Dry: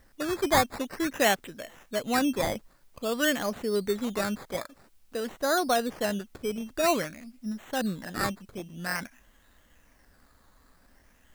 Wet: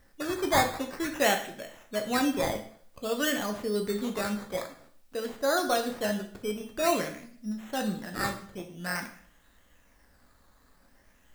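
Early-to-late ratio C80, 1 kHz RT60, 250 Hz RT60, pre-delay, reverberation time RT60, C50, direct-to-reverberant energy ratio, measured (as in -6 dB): 13.5 dB, 0.55 s, 0.50 s, 5 ms, 0.55 s, 10.0 dB, 4.0 dB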